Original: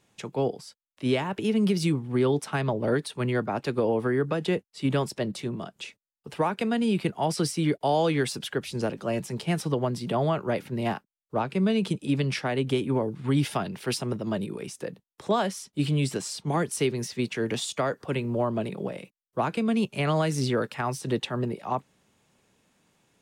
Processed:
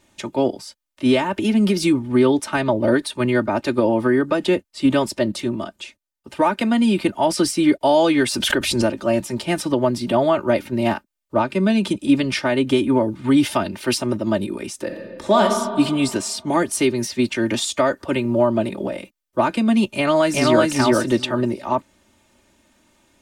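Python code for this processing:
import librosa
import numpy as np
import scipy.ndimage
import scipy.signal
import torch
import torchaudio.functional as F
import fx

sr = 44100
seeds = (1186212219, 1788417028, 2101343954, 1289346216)

y = fx.pre_swell(x, sr, db_per_s=36.0, at=(8.25, 8.86))
y = fx.reverb_throw(y, sr, start_s=14.83, length_s=0.58, rt60_s=2.0, drr_db=1.5)
y = fx.echo_throw(y, sr, start_s=19.95, length_s=0.72, ms=380, feedback_pct=20, wet_db=-0.5)
y = fx.edit(y, sr, fx.clip_gain(start_s=5.76, length_s=0.63, db=-4.5), tone=tone)
y = fx.low_shelf(y, sr, hz=63.0, db=8.5)
y = y + 0.8 * np.pad(y, (int(3.3 * sr / 1000.0), 0))[:len(y)]
y = y * librosa.db_to_amplitude(6.0)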